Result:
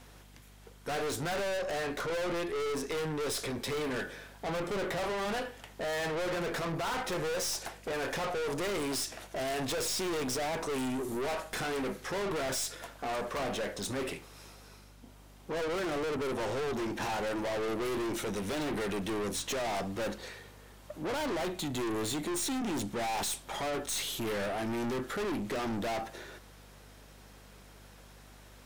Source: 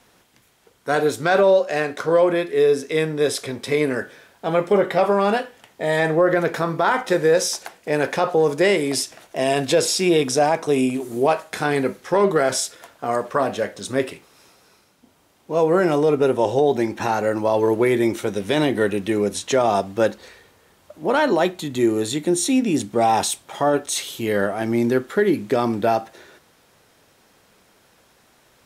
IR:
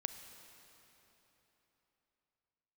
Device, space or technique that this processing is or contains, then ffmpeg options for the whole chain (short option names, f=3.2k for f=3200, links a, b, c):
valve amplifier with mains hum: -af "aeval=exprs='(tanh(39.8*val(0)+0.2)-tanh(0.2))/39.8':c=same,aeval=exprs='val(0)+0.00178*(sin(2*PI*50*n/s)+sin(2*PI*2*50*n/s)/2+sin(2*PI*3*50*n/s)/3+sin(2*PI*4*50*n/s)/4+sin(2*PI*5*50*n/s)/5)':c=same"